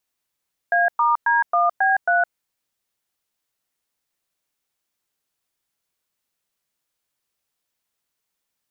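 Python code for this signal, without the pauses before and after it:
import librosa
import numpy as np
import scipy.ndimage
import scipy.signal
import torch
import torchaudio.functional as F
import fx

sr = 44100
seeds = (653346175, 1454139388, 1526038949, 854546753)

y = fx.dtmf(sr, digits='A*D1B3', tone_ms=163, gap_ms=108, level_db=-17.5)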